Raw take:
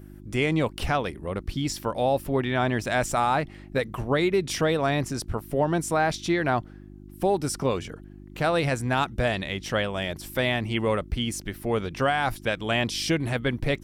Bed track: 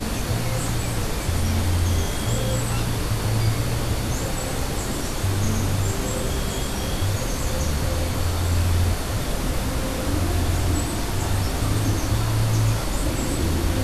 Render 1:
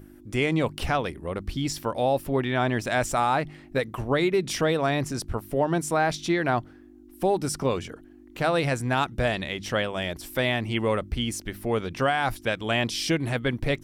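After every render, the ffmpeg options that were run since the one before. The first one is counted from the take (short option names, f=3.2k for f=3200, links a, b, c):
-af "bandreject=f=50:t=h:w=4,bandreject=f=100:t=h:w=4,bandreject=f=150:t=h:w=4,bandreject=f=200:t=h:w=4"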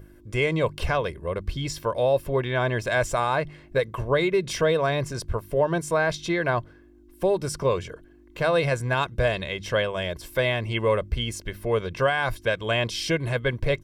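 -af "equalizer=f=13k:w=0.35:g=-5.5,aecho=1:1:1.9:0.61"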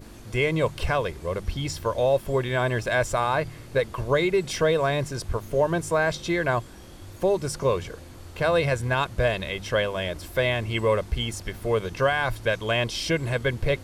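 -filter_complex "[1:a]volume=-20.5dB[a];[0:a][a]amix=inputs=2:normalize=0"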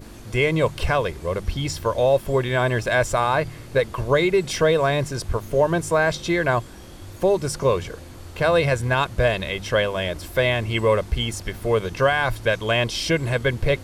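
-af "volume=3.5dB"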